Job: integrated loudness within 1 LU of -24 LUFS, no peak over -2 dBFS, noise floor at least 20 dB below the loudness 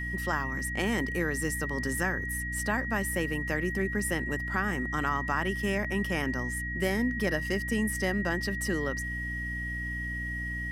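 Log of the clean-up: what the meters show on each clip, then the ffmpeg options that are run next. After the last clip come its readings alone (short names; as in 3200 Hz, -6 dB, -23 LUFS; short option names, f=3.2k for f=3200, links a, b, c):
hum 60 Hz; harmonics up to 300 Hz; hum level -34 dBFS; steady tone 1900 Hz; tone level -34 dBFS; loudness -30.0 LUFS; peak -13.5 dBFS; loudness target -24.0 LUFS
-> -af "bandreject=f=60:t=h:w=6,bandreject=f=120:t=h:w=6,bandreject=f=180:t=h:w=6,bandreject=f=240:t=h:w=6,bandreject=f=300:t=h:w=6"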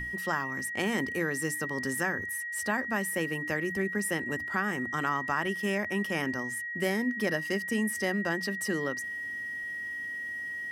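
hum none; steady tone 1900 Hz; tone level -34 dBFS
-> -af "bandreject=f=1.9k:w=30"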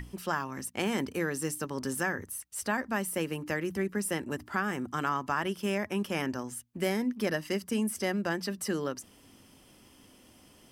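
steady tone none; loudness -32.5 LUFS; peak -15.5 dBFS; loudness target -24.0 LUFS
-> -af "volume=8.5dB"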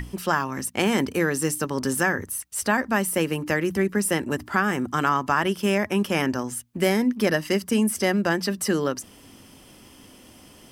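loudness -24.0 LUFS; peak -7.0 dBFS; noise floor -50 dBFS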